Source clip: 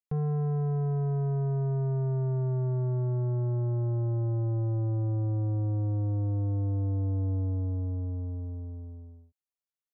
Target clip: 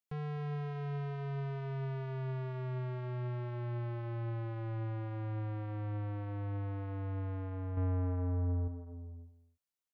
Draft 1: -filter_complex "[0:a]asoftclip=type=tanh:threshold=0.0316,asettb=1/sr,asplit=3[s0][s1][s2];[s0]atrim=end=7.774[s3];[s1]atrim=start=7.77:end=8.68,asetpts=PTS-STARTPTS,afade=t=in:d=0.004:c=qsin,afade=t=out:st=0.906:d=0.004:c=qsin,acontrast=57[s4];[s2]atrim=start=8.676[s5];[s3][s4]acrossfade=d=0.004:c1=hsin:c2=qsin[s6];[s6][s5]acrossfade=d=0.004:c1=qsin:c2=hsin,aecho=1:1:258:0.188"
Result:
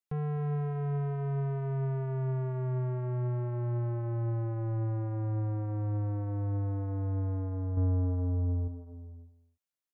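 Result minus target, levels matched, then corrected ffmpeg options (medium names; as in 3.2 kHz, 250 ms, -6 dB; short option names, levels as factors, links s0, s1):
saturation: distortion -8 dB
-filter_complex "[0:a]asoftclip=type=tanh:threshold=0.0133,asettb=1/sr,asplit=3[s0][s1][s2];[s0]atrim=end=7.774[s3];[s1]atrim=start=7.77:end=8.68,asetpts=PTS-STARTPTS,afade=t=in:d=0.004:c=qsin,afade=t=out:st=0.906:d=0.004:c=qsin,acontrast=57[s4];[s2]atrim=start=8.676[s5];[s3][s4]acrossfade=d=0.004:c1=hsin:c2=qsin[s6];[s6][s5]acrossfade=d=0.004:c1=qsin:c2=hsin,aecho=1:1:258:0.188"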